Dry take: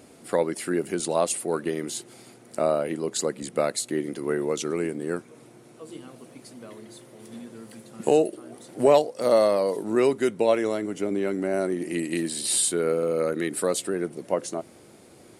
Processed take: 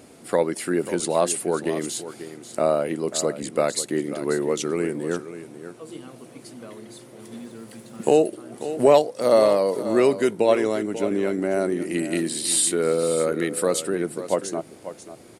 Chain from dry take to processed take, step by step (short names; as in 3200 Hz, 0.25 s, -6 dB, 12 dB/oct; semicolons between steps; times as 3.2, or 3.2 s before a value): echo 0.54 s -12.5 dB; 7.36–8.21 crackle 300/s -49 dBFS; gain +2.5 dB